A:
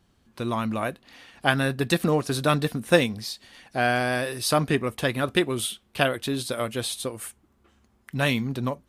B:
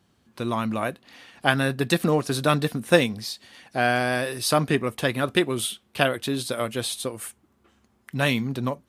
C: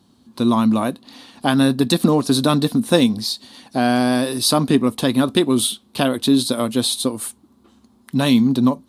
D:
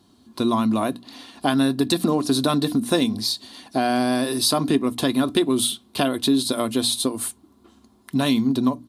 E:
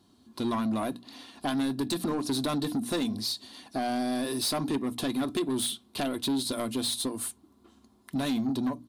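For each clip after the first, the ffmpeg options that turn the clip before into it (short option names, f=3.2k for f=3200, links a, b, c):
-af "highpass=86,volume=1dB"
-filter_complex "[0:a]equalizer=f=2k:t=o:w=1.6:g=-7.5,asplit=2[a][b];[b]alimiter=limit=-16.5dB:level=0:latency=1:release=157,volume=1.5dB[c];[a][c]amix=inputs=2:normalize=0,equalizer=f=250:t=o:w=0.67:g=12,equalizer=f=1k:t=o:w=0.67:g=7,equalizer=f=4k:t=o:w=0.67:g=10,equalizer=f=10k:t=o:w=0.67:g=5,volume=-3dB"
-af "bandreject=f=60:t=h:w=6,bandreject=f=120:t=h:w=6,bandreject=f=180:t=h:w=6,bandreject=f=240:t=h:w=6,bandreject=f=300:t=h:w=6,aecho=1:1:2.9:0.33,acompressor=threshold=-19dB:ratio=2"
-af "asoftclip=type=tanh:threshold=-18dB,volume=-5.5dB"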